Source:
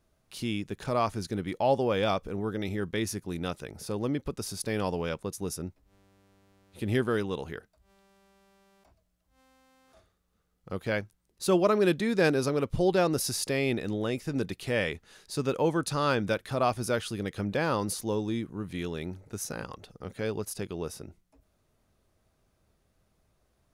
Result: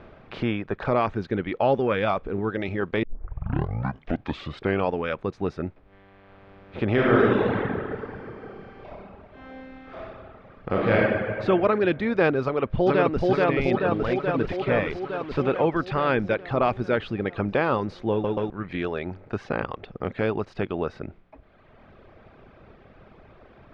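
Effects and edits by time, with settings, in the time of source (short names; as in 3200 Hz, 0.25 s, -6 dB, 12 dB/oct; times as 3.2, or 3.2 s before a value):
3.03 tape start 1.88 s
6.93–10.97 reverb throw, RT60 2.3 s, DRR -7.5 dB
12.43–13.27 echo throw 0.43 s, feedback 70%, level 0 dB
13.8–15.64 delta modulation 64 kbps, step -39 dBFS
18.11 stutter in place 0.13 s, 3 plays
whole clip: per-bin compression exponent 0.6; LPF 3000 Hz 24 dB/oct; reverb removal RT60 1.8 s; gain +2 dB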